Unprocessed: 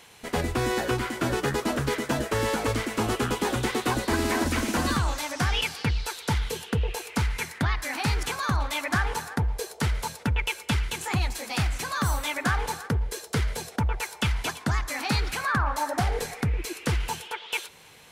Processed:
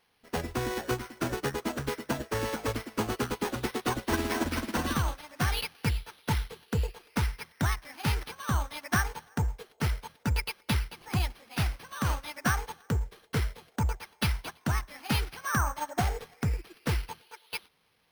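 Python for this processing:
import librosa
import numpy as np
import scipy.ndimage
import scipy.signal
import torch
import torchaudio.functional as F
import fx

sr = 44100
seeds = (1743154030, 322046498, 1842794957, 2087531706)

y = np.repeat(x[::6], 6)[:len(x)]
y = fx.upward_expand(y, sr, threshold_db=-34.0, expansion=2.5)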